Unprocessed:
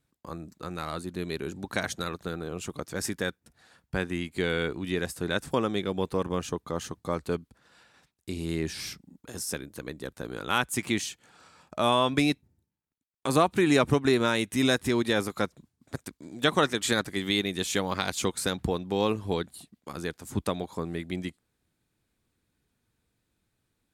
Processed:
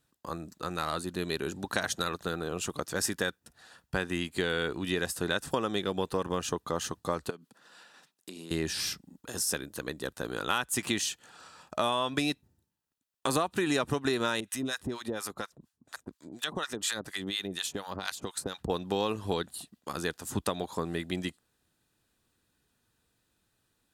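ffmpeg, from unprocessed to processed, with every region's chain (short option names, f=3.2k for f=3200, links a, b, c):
-filter_complex "[0:a]asettb=1/sr,asplit=3[a][b][c];[a]atrim=end=7.304[d];[b]atrim=start=7.3:end=8.51,asetpts=PTS-STARTPTS,afade=t=in:d=0.004:c=qsin,afade=t=out:st=1.206:d=0.004:c=qsin,highpass=f=160:w=0.5412,highpass=f=160:w=1.3066,acompressor=threshold=-41dB:ratio=8:attack=3.2:release=140:knee=1:detection=peak[e];[c]atrim=start=8.506[f];[d][e]acrossfade=d=0.004:c1=hsin:c2=qsin[g];[g][f]acrossfade=d=0.004:c1=qsin:c2=hsin,asettb=1/sr,asplit=3[h][i][j];[h]atrim=end=14.404[k];[i]atrim=start=14.4:end=18.7,asetpts=PTS-STARTPTS,afade=t=in:d=0.004:c=qsin,afade=t=out:st=4.296:d=0.004:c=qsin,acompressor=threshold=-27dB:ratio=6:attack=3.2:release=140:knee=1:detection=peak,acrossover=split=870[l][m];[l]aeval=exprs='val(0)*(1-1/2+1/2*cos(2*PI*4.2*n/s))':c=same[n];[m]aeval=exprs='val(0)*(1-1/2-1/2*cos(2*PI*4.2*n/s))':c=same[o];[n][o]amix=inputs=2:normalize=0[p];[j]atrim=start=18.696[q];[k][p]acrossfade=d=0.004:c1=hsin:c2=qsin[r];[r][q]acrossfade=d=0.004:c1=qsin:c2=hsin,lowshelf=f=460:g=-7,bandreject=f=2.2k:w=6.7,acompressor=threshold=-30dB:ratio=6,volume=5dB"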